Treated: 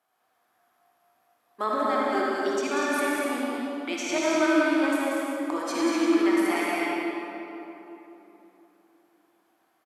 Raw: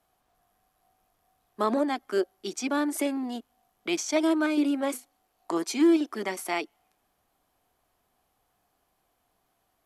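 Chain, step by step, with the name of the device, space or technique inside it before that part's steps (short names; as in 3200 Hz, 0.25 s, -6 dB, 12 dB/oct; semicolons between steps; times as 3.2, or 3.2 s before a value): stadium PA (HPF 250 Hz 12 dB/oct; bell 1500 Hz +6.5 dB 1.5 oct; loudspeakers at several distances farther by 65 m -5 dB, 83 m -6 dB; reverb RT60 3.4 s, pre-delay 48 ms, DRR -4.5 dB); gain -6 dB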